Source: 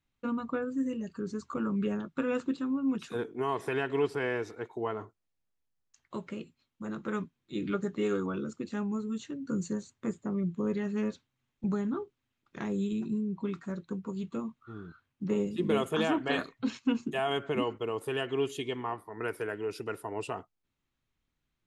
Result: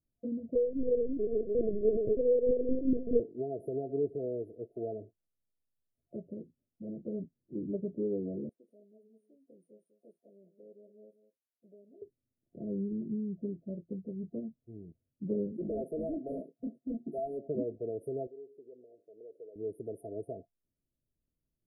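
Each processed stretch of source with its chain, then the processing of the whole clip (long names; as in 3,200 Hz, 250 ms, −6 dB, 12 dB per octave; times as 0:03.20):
0:00.55–0:03.20: feedback delay that plays each chunk backwards 206 ms, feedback 50%, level −2 dB + parametric band 450 Hz +14 dB 0.37 octaves + linear-prediction vocoder at 8 kHz pitch kept
0:08.49–0:12.02: high-pass filter 1,100 Hz + single-tap delay 194 ms −12.5 dB
0:15.52–0:17.48: high-pass filter 170 Hz 24 dB per octave + gain into a clipping stage and back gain 29 dB
0:18.27–0:19.56: downward compressor 2.5 to 1, threshold −41 dBFS + resonant band-pass 490 Hz, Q 3.6
whole clip: brick-wall band-stop 690–9,200 Hz; treble cut that deepens with the level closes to 2,000 Hz, closed at −26 dBFS; dynamic equaliser 980 Hz, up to +7 dB, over −53 dBFS, Q 1.7; level −3.5 dB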